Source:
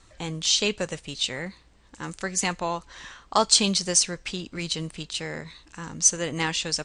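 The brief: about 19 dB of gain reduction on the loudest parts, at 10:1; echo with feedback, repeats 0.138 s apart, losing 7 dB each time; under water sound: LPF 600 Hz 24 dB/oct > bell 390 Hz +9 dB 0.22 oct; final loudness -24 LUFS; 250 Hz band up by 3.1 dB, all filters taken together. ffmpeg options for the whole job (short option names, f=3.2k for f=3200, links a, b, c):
-af "equalizer=f=250:t=o:g=3.5,acompressor=threshold=-33dB:ratio=10,lowpass=f=600:w=0.5412,lowpass=f=600:w=1.3066,equalizer=f=390:t=o:w=0.22:g=9,aecho=1:1:138|276|414|552|690:0.447|0.201|0.0905|0.0407|0.0183,volume=16dB"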